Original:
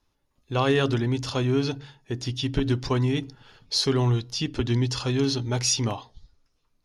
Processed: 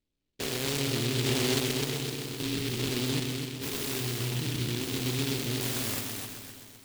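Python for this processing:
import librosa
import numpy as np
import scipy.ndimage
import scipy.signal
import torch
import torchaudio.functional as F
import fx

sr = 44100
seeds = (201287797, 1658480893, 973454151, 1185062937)

y = fx.spec_steps(x, sr, hold_ms=400)
y = fx.peak_eq(y, sr, hz=840.0, db=8.0, octaves=1.9, at=(1.26, 2.42))
y = fx.rider(y, sr, range_db=10, speed_s=2.0)
y = fx.low_shelf(y, sr, hz=190.0, db=-9.5)
y = fx.env_lowpass(y, sr, base_hz=470.0, full_db=-29.5)
y = fx.echo_heads(y, sr, ms=128, heads='first and second', feedback_pct=57, wet_db=-7)
y = fx.noise_mod_delay(y, sr, seeds[0], noise_hz=3200.0, depth_ms=0.29)
y = y * 10.0 ** (-1.0 / 20.0)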